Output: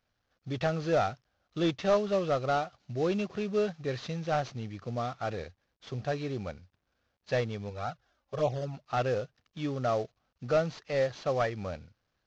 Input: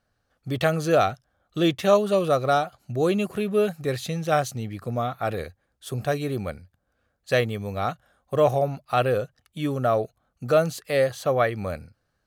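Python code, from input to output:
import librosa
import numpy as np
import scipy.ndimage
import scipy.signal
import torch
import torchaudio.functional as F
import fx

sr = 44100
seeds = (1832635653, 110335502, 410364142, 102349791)

y = fx.cvsd(x, sr, bps=32000)
y = fx.env_flanger(y, sr, rest_ms=3.9, full_db=-14.5, at=(7.69, 8.73), fade=0.02)
y = y * librosa.db_to_amplitude(-6.5)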